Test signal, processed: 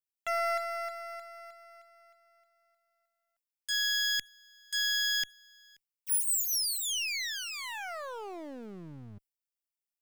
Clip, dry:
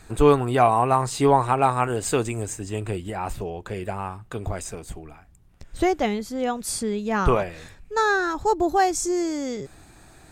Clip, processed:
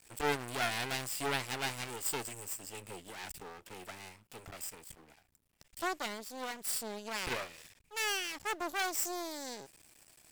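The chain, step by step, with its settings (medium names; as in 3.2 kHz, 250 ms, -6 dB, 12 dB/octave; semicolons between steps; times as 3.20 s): comb filter that takes the minimum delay 0.38 ms; half-wave rectifier; tilt EQ +3 dB/octave; trim -8.5 dB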